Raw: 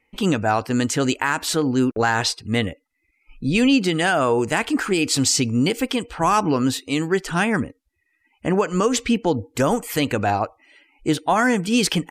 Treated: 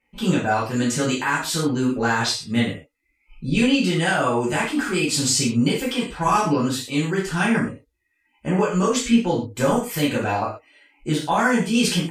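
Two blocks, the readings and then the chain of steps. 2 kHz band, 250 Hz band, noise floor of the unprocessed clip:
−0.5 dB, 0.0 dB, −70 dBFS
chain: reverb whose tail is shaped and stops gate 150 ms falling, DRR −7 dB
level −8.5 dB

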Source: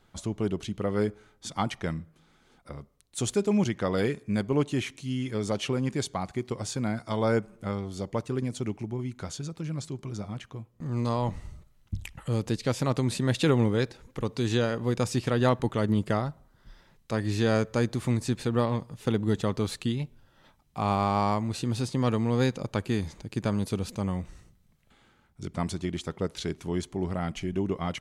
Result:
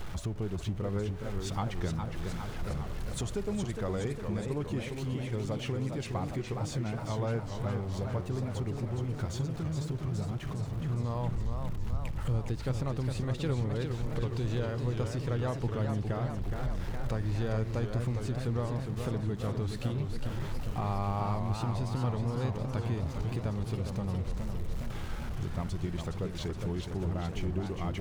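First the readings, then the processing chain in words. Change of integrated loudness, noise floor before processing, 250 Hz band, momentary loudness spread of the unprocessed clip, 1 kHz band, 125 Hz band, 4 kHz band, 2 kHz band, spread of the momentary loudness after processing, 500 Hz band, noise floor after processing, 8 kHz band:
−5.0 dB, −64 dBFS, −7.0 dB, 11 LU, −6.5 dB, −1.0 dB, −7.5 dB, −7.5 dB, 5 LU, −7.0 dB, −39 dBFS, −8.0 dB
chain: converter with a step at zero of −38.5 dBFS
spectral tilt −2.5 dB per octave
downward compressor 2.5 to 1, threshold −31 dBFS, peak gain reduction 12.5 dB
parametric band 240 Hz −7 dB 1.5 octaves
feedback echo with a swinging delay time 413 ms, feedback 69%, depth 165 cents, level −6 dB

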